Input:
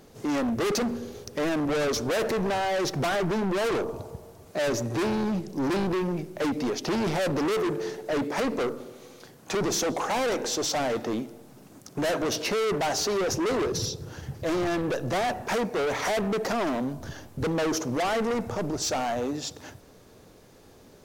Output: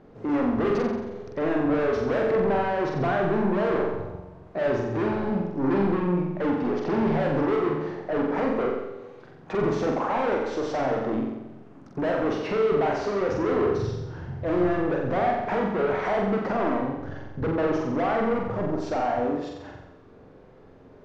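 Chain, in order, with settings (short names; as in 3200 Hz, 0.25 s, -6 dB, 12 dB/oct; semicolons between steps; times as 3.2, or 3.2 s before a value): LPF 1700 Hz 12 dB/oct; on a send: flutter echo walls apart 7.7 m, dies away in 0.9 s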